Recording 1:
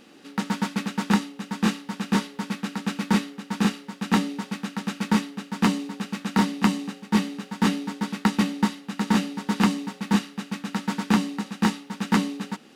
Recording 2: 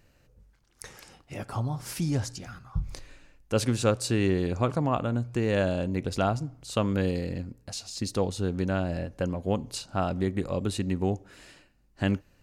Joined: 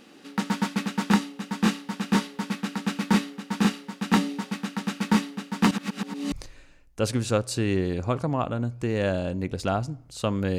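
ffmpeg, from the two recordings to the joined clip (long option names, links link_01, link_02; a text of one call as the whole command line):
ffmpeg -i cue0.wav -i cue1.wav -filter_complex "[0:a]apad=whole_dur=10.58,atrim=end=10.58,asplit=2[link_01][link_02];[link_01]atrim=end=5.712[link_03];[link_02]atrim=start=5.708:end=6.322,asetpts=PTS-STARTPTS,areverse[link_04];[1:a]atrim=start=2.848:end=7.11[link_05];[link_03][link_04]acrossfade=duration=0.004:curve1=hsin:curve2=hsin[link_06];[link_06][link_05]acrossfade=duration=0.004:curve1=hsin:curve2=hsin" out.wav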